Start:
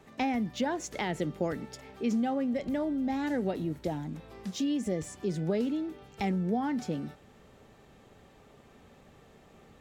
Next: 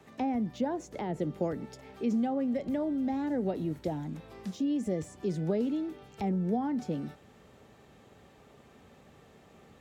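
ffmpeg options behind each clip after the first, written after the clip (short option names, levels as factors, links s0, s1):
-filter_complex "[0:a]highpass=55,acrossover=split=370|960[s0][s1][s2];[s2]acompressor=threshold=0.00316:ratio=6[s3];[s0][s1][s3]amix=inputs=3:normalize=0"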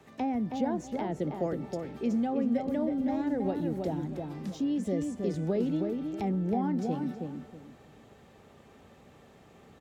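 -filter_complex "[0:a]asplit=2[s0][s1];[s1]adelay=320,lowpass=f=1700:p=1,volume=0.631,asplit=2[s2][s3];[s3]adelay=320,lowpass=f=1700:p=1,volume=0.27,asplit=2[s4][s5];[s5]adelay=320,lowpass=f=1700:p=1,volume=0.27,asplit=2[s6][s7];[s7]adelay=320,lowpass=f=1700:p=1,volume=0.27[s8];[s0][s2][s4][s6][s8]amix=inputs=5:normalize=0"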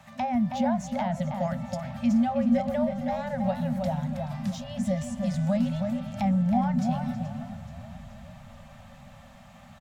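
-filter_complex "[0:a]asplit=7[s0][s1][s2][s3][s4][s5][s6];[s1]adelay=427,afreqshift=-36,volume=0.158[s7];[s2]adelay=854,afreqshift=-72,volume=0.1[s8];[s3]adelay=1281,afreqshift=-108,volume=0.0631[s9];[s4]adelay=1708,afreqshift=-144,volume=0.0398[s10];[s5]adelay=2135,afreqshift=-180,volume=0.0248[s11];[s6]adelay=2562,afreqshift=-216,volume=0.0157[s12];[s0][s7][s8][s9][s10][s11][s12]amix=inputs=7:normalize=0,afftfilt=real='re*(1-between(b*sr/4096,250,530))':imag='im*(1-between(b*sr/4096,250,530))':win_size=4096:overlap=0.75,volume=2.11"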